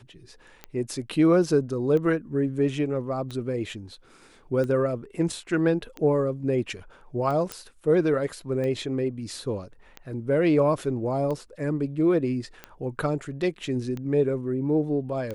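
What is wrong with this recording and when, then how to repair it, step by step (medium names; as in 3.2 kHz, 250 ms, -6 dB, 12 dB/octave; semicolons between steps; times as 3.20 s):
tick 45 rpm -21 dBFS
7.52 s: pop -15 dBFS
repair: de-click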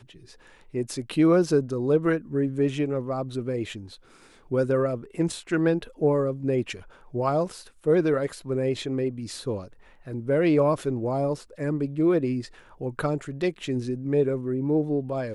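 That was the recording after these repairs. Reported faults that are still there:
nothing left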